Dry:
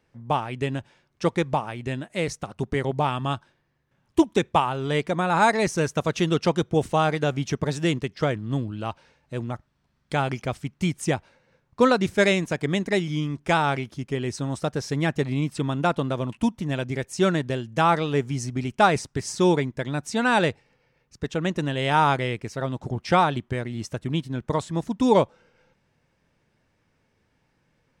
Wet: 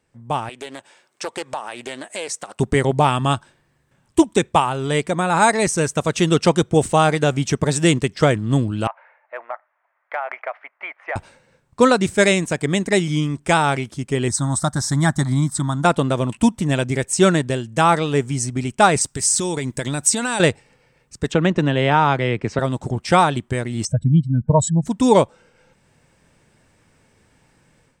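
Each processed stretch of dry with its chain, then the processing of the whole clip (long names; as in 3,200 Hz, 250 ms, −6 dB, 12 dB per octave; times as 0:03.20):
0:00.49–0:02.60: high-pass filter 430 Hz + downward compressor 2.5 to 1, threshold −39 dBFS + highs frequency-modulated by the lows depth 0.28 ms
0:08.87–0:11.16: elliptic band-pass filter 620–2,100 Hz, stop band 60 dB + downward compressor 4 to 1, threshold −33 dBFS
0:14.28–0:15.85: parametric band 3,700 Hz +6 dB 0.24 octaves + phaser with its sweep stopped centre 1,100 Hz, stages 4
0:19.01–0:20.40: high-shelf EQ 4,000 Hz +10.5 dB + downward compressor 12 to 1, threshold −26 dBFS
0:21.32–0:22.59: high-frequency loss of the air 180 metres + multiband upward and downward compressor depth 70%
0:23.85–0:24.86: expanding power law on the bin magnitudes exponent 2.2 + comb filter 1.3 ms, depth 75%
whole clip: parametric band 8,200 Hz +13.5 dB 0.41 octaves; automatic gain control; level −1 dB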